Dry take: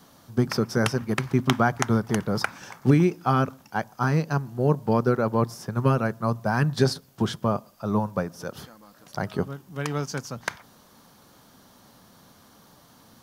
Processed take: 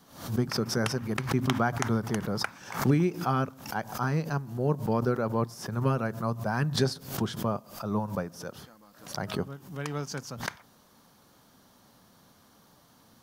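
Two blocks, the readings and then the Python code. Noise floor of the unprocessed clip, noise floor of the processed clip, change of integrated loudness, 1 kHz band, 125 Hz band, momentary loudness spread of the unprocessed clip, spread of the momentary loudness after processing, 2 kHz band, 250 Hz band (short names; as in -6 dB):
-55 dBFS, -60 dBFS, -4.5 dB, -5.0 dB, -4.5 dB, 11 LU, 10 LU, -4.5 dB, -5.0 dB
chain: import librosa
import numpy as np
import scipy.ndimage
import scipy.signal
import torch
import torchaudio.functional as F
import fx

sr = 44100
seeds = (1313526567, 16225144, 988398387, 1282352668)

y = fx.pre_swell(x, sr, db_per_s=110.0)
y = y * 10.0 ** (-5.5 / 20.0)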